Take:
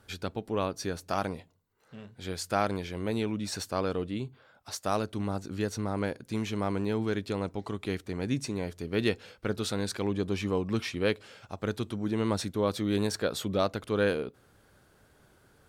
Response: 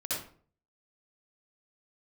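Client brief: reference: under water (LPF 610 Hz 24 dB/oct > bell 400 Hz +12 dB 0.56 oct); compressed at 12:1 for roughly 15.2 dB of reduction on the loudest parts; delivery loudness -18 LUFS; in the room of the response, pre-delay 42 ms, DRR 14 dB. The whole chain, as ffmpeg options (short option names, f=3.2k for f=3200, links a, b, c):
-filter_complex "[0:a]acompressor=threshold=-38dB:ratio=12,asplit=2[a][b];[1:a]atrim=start_sample=2205,adelay=42[c];[b][c]afir=irnorm=-1:irlink=0,volume=-19dB[d];[a][d]amix=inputs=2:normalize=0,lowpass=f=610:w=0.5412,lowpass=f=610:w=1.3066,equalizer=f=400:t=o:w=0.56:g=12,volume=21dB"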